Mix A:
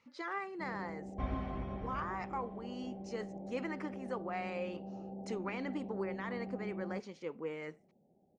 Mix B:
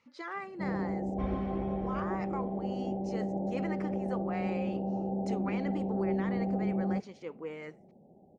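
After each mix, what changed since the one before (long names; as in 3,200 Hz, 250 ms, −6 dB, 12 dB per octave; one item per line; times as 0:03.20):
first sound +12.0 dB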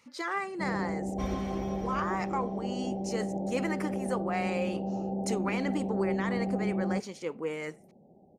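speech +6.0 dB
second sound: remove high-frequency loss of the air 340 metres
master: remove high-frequency loss of the air 140 metres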